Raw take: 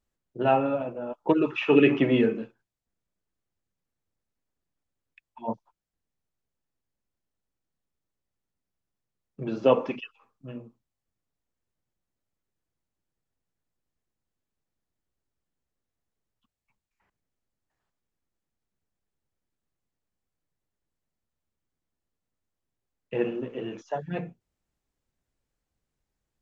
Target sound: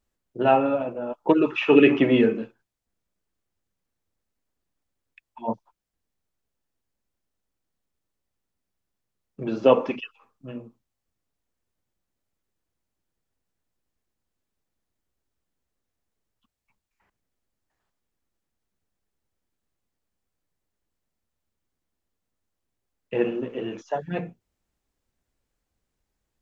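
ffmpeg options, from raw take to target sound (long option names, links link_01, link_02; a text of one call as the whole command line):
ffmpeg -i in.wav -af "equalizer=frequency=140:width=4.3:gain=-5.5,volume=3.5dB" out.wav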